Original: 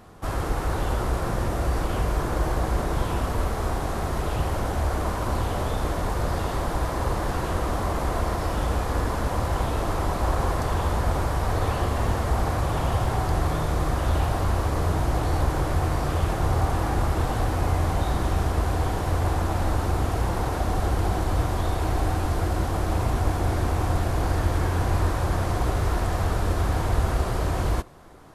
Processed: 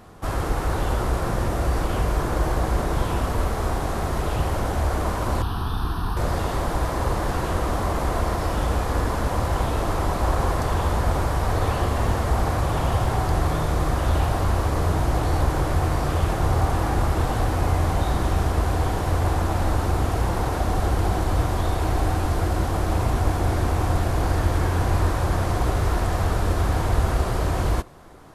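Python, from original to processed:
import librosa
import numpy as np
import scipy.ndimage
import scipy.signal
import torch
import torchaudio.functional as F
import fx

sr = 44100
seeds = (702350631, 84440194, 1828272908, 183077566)

y = fx.fixed_phaser(x, sr, hz=2100.0, stages=6, at=(5.42, 6.17))
y = y * 10.0 ** (2.0 / 20.0)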